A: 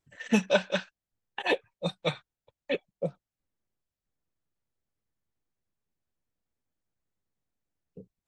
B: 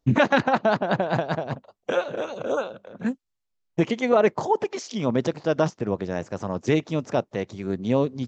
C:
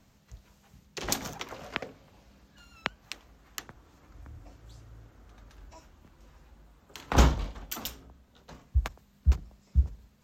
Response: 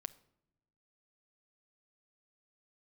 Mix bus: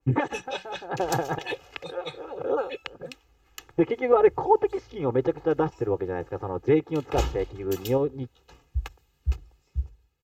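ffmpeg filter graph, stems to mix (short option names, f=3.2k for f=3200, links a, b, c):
-filter_complex "[0:a]volume=-10dB,asplit=2[a][b];[1:a]lowpass=1.5k,volume=-2.5dB[c];[2:a]equalizer=f=2.7k:t=o:w=0.23:g=8,dynaudnorm=f=110:g=9:m=8.5dB,volume=-15dB[d];[b]apad=whole_len=365099[e];[c][e]sidechaincompress=threshold=-55dB:ratio=4:attack=7.1:release=157[f];[a][f][d]amix=inputs=3:normalize=0,aecho=1:1:2.4:0.91,adynamicequalizer=threshold=0.00562:dfrequency=2400:dqfactor=0.7:tfrequency=2400:tqfactor=0.7:attack=5:release=100:ratio=0.375:range=1.5:mode=boostabove:tftype=highshelf"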